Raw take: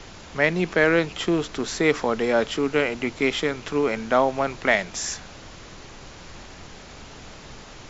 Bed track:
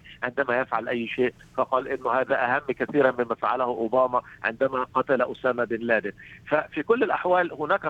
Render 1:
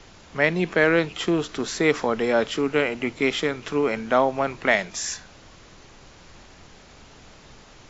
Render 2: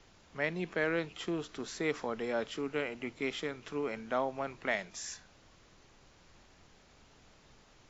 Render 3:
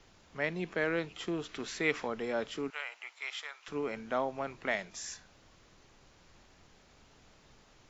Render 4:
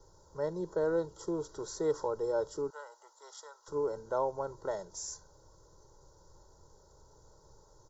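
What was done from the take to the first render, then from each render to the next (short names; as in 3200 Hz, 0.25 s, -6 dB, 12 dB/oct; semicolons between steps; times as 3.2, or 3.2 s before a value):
noise print and reduce 6 dB
gain -13 dB
1.45–2.08 bell 2400 Hz +7.5 dB 1.2 oct; 2.7–3.68 HPF 820 Hz 24 dB/oct
Chebyshev band-stop 980–5900 Hz, order 2; comb 2.1 ms, depth 86%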